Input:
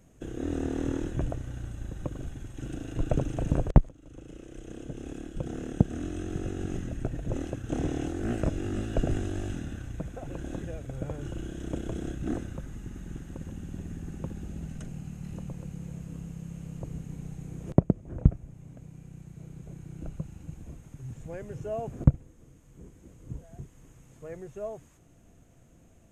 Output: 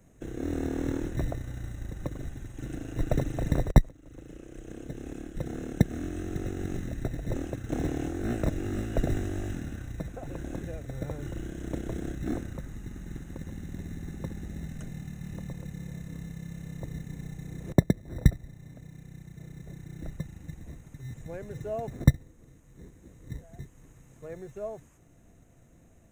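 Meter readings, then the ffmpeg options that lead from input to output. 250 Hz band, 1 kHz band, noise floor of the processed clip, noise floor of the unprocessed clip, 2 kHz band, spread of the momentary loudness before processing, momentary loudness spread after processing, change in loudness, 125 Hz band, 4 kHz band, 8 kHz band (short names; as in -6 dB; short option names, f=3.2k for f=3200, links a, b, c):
0.0 dB, 0.0 dB, -57 dBFS, -57 dBFS, +3.5 dB, 19 LU, 19 LU, 0.0 dB, 0.0 dB, +2.5 dB, +1.5 dB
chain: -filter_complex "[0:a]equalizer=f=4k:t=o:w=0.5:g=-13,acrossover=split=200[a][b];[a]acrusher=samples=23:mix=1:aa=0.000001[c];[c][b]amix=inputs=2:normalize=0"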